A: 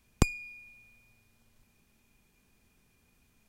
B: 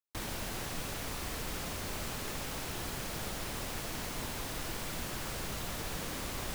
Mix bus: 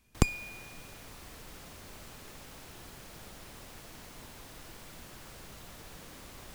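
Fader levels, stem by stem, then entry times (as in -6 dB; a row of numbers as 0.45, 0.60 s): 0.0, -10.5 dB; 0.00, 0.00 s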